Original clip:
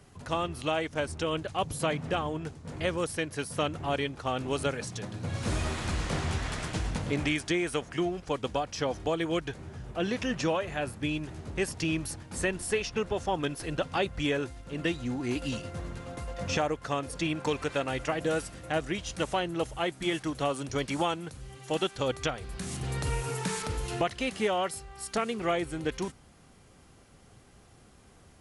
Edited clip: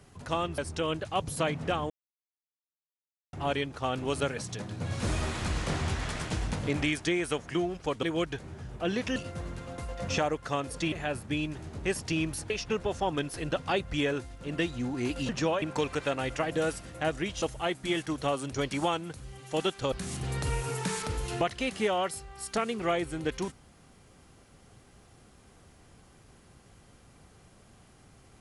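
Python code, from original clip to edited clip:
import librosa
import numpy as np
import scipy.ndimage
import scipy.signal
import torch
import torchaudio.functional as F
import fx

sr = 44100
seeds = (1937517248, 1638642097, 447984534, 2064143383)

y = fx.edit(x, sr, fx.cut(start_s=0.58, length_s=0.43),
    fx.silence(start_s=2.33, length_s=1.43),
    fx.cut(start_s=8.46, length_s=0.72),
    fx.swap(start_s=10.31, length_s=0.33, other_s=15.55, other_length_s=1.76),
    fx.cut(start_s=12.22, length_s=0.54),
    fx.cut(start_s=19.11, length_s=0.48),
    fx.cut(start_s=22.09, length_s=0.43), tone=tone)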